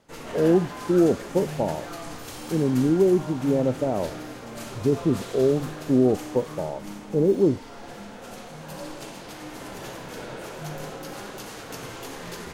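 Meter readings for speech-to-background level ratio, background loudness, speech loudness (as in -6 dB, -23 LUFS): 13.5 dB, -37.0 LUFS, -23.5 LUFS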